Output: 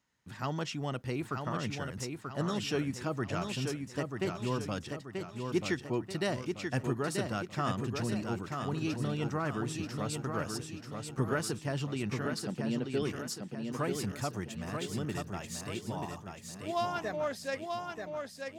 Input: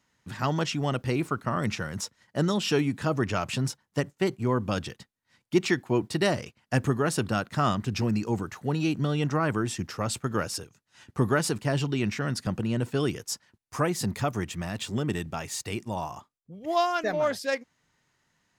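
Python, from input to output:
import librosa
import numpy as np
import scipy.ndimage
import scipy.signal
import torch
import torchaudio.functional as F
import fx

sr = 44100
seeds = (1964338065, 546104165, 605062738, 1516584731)

y = fx.cabinet(x, sr, low_hz=150.0, low_slope=24, high_hz=4900.0, hz=(240.0, 410.0, 1100.0, 4300.0), db=(5, 5, -9, 8), at=(12.25, 13.02))
y = fx.echo_feedback(y, sr, ms=935, feedback_pct=46, wet_db=-5.0)
y = F.gain(torch.from_numpy(y), -8.0).numpy()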